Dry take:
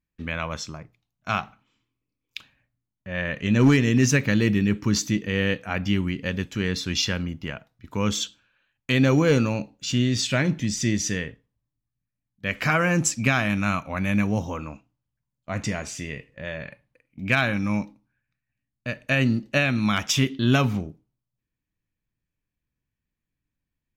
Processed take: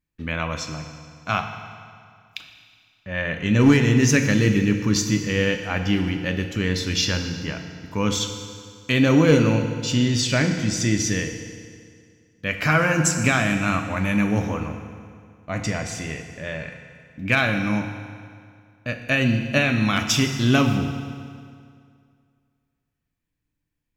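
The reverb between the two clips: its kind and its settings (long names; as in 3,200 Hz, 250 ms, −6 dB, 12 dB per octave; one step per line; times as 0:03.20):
feedback delay network reverb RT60 2.2 s, low-frequency decay 1×, high-frequency decay 0.85×, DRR 5 dB
level +1.5 dB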